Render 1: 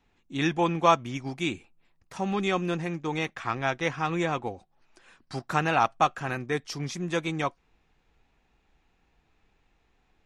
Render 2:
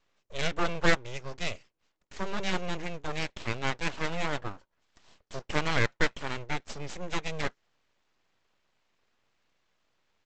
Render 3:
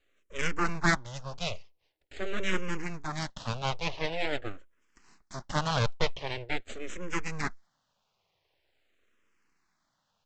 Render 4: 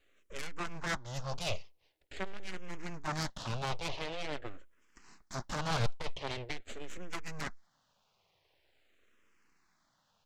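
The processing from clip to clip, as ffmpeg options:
ffmpeg -i in.wav -af "highpass=140,aresample=16000,aeval=exprs='abs(val(0))':channel_layout=same,aresample=44100,volume=-1dB" out.wav
ffmpeg -i in.wav -filter_complex "[0:a]asplit=2[link_01][link_02];[link_02]afreqshift=-0.45[link_03];[link_01][link_03]amix=inputs=2:normalize=1,volume=3dB" out.wav
ffmpeg -i in.wav -af "alimiter=limit=-21.5dB:level=0:latency=1:release=343,aeval=exprs='(tanh(35.5*val(0)+0.7)-tanh(0.7))/35.5':channel_layout=same,volume=6.5dB" out.wav

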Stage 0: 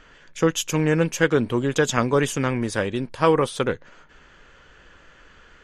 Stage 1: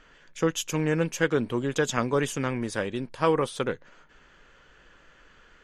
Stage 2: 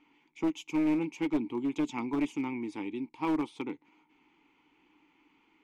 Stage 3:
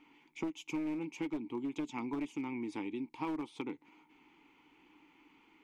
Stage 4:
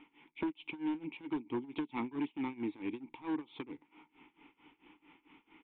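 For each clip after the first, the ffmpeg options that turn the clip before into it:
ffmpeg -i in.wav -af "equalizer=frequency=82:width=2.7:gain=-7.5,volume=-5dB" out.wav
ffmpeg -i in.wav -filter_complex "[0:a]asplit=3[link_01][link_02][link_03];[link_01]bandpass=frequency=300:width_type=q:width=8,volume=0dB[link_04];[link_02]bandpass=frequency=870:width_type=q:width=8,volume=-6dB[link_05];[link_03]bandpass=frequency=2240:width_type=q:width=8,volume=-9dB[link_06];[link_04][link_05][link_06]amix=inputs=3:normalize=0,aeval=exprs='clip(val(0),-1,0.0266)':channel_layout=same,highshelf=frequency=3900:gain=8,volume=5.5dB" out.wav
ffmpeg -i in.wav -af "acompressor=threshold=-39dB:ratio=4,volume=2.5dB" out.wav
ffmpeg -i in.wav -af "volume=35dB,asoftclip=hard,volume=-35dB,tremolo=f=4.5:d=0.91,aresample=8000,aresample=44100,volume=5dB" out.wav

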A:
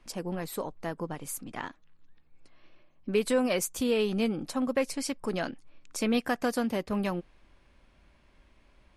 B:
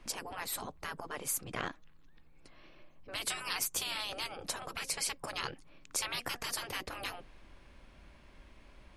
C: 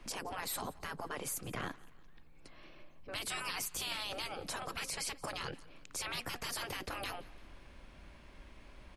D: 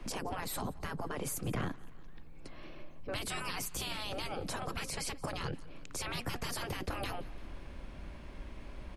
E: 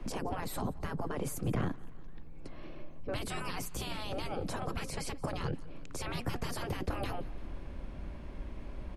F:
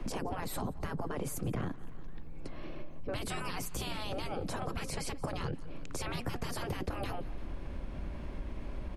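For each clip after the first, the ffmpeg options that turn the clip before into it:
ffmpeg -i in.wav -af "afftfilt=real='re*lt(hypot(re,im),0.0447)':imag='im*lt(hypot(re,im),0.0447)':win_size=1024:overlap=0.75,volume=4.5dB" out.wav
ffmpeg -i in.wav -filter_complex "[0:a]acrossover=split=240[link_01][link_02];[link_02]alimiter=level_in=7.5dB:limit=-24dB:level=0:latency=1:release=11,volume=-7.5dB[link_03];[link_01][link_03]amix=inputs=2:normalize=0,aecho=1:1:173|346|519:0.0794|0.0381|0.0183,volume=2dB" out.wav
ffmpeg -i in.wav -filter_complex "[0:a]tiltshelf=frequency=810:gain=3.5,acrossover=split=230[link_01][link_02];[link_02]alimiter=level_in=11dB:limit=-24dB:level=0:latency=1:release=379,volume=-11dB[link_03];[link_01][link_03]amix=inputs=2:normalize=0,volume=6dB" out.wav
ffmpeg -i in.wav -af "tiltshelf=frequency=1100:gain=4" out.wav
ffmpeg -i in.wav -af "acompressor=threshold=-39dB:ratio=2.5,volume=4.5dB" out.wav

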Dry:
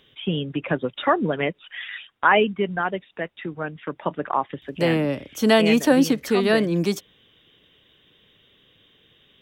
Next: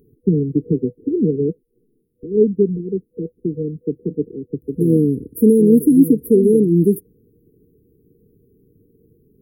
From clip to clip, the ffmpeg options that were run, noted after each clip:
ffmpeg -i in.wav -filter_complex "[0:a]asplit=2[link_01][link_02];[link_02]alimiter=limit=-14.5dB:level=0:latency=1:release=415,volume=-2dB[link_03];[link_01][link_03]amix=inputs=2:normalize=0,afftfilt=real='re*(1-between(b*sr/4096,490,9600))':imag='im*(1-between(b*sr/4096,490,9600))':win_size=4096:overlap=0.75,volume=4.5dB" out.wav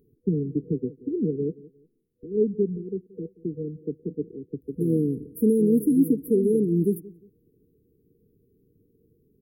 ffmpeg -i in.wav -filter_complex "[0:a]asplit=2[link_01][link_02];[link_02]adelay=178,lowpass=frequency=1400:poles=1,volume=-20dB,asplit=2[link_03][link_04];[link_04]adelay=178,lowpass=frequency=1400:poles=1,volume=0.3[link_05];[link_01][link_03][link_05]amix=inputs=3:normalize=0,volume=-8.5dB" out.wav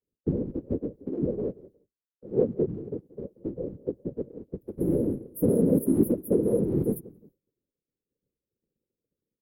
ffmpeg -i in.wav -af "afftfilt=real='hypot(re,im)*cos(2*PI*random(0))':imag='hypot(re,im)*sin(2*PI*random(1))':win_size=512:overlap=0.75,lowshelf=frequency=450:gain=-5.5,agate=range=-33dB:threshold=-59dB:ratio=3:detection=peak,volume=7dB" out.wav

